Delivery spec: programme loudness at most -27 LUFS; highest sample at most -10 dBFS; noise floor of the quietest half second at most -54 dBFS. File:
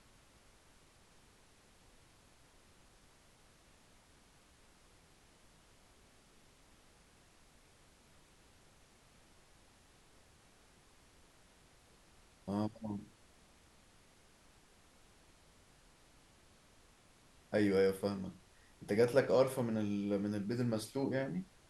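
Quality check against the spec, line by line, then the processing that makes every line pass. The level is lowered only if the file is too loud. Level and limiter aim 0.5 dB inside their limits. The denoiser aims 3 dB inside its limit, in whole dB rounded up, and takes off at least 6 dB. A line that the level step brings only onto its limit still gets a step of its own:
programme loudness -35.5 LUFS: pass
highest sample -16.5 dBFS: pass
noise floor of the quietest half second -65 dBFS: pass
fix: none needed

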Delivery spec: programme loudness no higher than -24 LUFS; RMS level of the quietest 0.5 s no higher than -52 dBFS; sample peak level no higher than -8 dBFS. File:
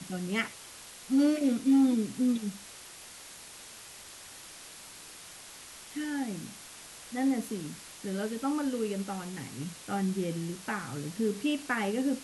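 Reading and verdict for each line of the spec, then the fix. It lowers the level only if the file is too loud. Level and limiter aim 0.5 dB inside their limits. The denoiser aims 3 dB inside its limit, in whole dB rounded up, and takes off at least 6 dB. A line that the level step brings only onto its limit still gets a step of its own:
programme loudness -31.0 LUFS: pass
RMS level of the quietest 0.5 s -48 dBFS: fail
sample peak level -16.5 dBFS: pass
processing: noise reduction 7 dB, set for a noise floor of -48 dBFS

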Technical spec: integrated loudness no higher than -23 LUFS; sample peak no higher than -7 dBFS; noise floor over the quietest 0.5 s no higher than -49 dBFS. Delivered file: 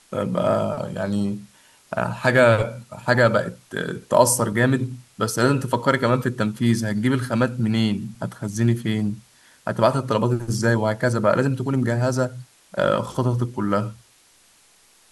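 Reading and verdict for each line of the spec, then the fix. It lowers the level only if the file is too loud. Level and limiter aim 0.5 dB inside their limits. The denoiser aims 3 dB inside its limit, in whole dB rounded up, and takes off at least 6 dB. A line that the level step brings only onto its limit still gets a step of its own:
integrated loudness -22.0 LUFS: fail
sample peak -2.5 dBFS: fail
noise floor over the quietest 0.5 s -56 dBFS: pass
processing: trim -1.5 dB; peak limiter -7.5 dBFS

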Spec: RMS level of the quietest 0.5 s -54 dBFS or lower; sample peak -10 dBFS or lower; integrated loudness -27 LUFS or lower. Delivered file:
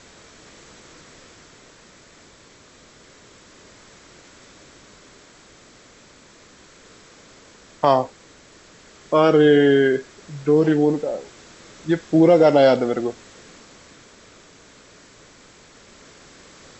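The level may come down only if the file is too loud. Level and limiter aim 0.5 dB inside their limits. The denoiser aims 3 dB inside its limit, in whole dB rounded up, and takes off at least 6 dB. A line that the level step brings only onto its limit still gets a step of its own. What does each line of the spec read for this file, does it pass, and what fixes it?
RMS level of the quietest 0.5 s -50 dBFS: fail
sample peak -3.5 dBFS: fail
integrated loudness -18.0 LUFS: fail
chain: trim -9.5 dB

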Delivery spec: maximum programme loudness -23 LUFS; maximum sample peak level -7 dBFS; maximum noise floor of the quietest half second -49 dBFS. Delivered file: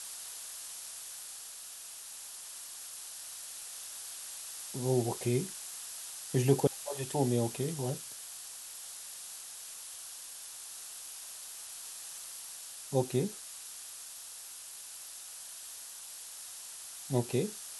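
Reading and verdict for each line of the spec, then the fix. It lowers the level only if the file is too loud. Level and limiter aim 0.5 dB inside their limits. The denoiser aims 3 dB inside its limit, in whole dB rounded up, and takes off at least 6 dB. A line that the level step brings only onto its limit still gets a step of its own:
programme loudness -37.5 LUFS: pass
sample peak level -13.0 dBFS: pass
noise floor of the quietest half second -47 dBFS: fail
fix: noise reduction 6 dB, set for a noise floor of -47 dBFS

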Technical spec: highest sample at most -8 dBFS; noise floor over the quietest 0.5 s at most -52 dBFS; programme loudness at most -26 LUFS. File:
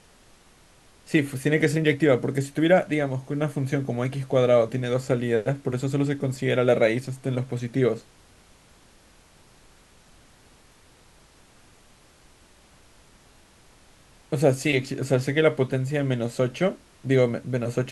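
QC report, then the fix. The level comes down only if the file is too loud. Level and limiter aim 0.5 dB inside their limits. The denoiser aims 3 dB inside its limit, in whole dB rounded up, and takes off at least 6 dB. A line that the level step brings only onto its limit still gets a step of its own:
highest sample -6.0 dBFS: fail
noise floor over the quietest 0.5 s -55 dBFS: pass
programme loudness -24.0 LUFS: fail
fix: trim -2.5 dB

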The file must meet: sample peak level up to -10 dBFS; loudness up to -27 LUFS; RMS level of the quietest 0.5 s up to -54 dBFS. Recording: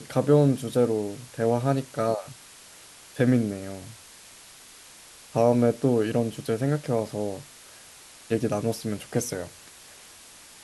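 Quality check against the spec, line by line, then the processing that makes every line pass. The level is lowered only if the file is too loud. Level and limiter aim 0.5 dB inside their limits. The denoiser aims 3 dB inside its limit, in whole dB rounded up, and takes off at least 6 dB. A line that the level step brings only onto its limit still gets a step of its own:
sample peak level -8.0 dBFS: fail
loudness -25.5 LUFS: fail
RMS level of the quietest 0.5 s -49 dBFS: fail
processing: noise reduction 6 dB, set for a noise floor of -49 dBFS; trim -2 dB; peak limiter -10.5 dBFS

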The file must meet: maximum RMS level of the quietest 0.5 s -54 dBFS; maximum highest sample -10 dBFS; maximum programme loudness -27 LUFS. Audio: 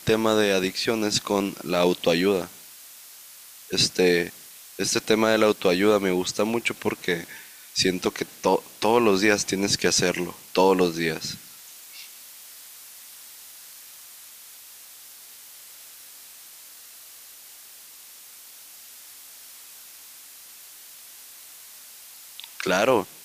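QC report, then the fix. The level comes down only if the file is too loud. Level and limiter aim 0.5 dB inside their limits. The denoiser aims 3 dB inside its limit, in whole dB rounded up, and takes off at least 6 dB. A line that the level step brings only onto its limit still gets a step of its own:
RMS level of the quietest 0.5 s -46 dBFS: fail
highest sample -5.5 dBFS: fail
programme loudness -23.0 LUFS: fail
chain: noise reduction 7 dB, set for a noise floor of -46 dBFS; trim -4.5 dB; peak limiter -10.5 dBFS

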